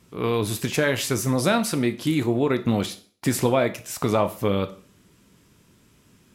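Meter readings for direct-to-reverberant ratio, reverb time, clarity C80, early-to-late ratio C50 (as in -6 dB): 9.0 dB, 0.45 s, 20.0 dB, 15.5 dB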